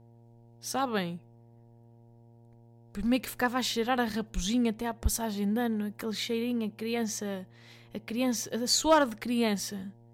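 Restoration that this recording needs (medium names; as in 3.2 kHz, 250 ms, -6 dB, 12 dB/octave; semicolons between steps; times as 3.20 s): clip repair -14.5 dBFS; de-hum 116.8 Hz, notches 8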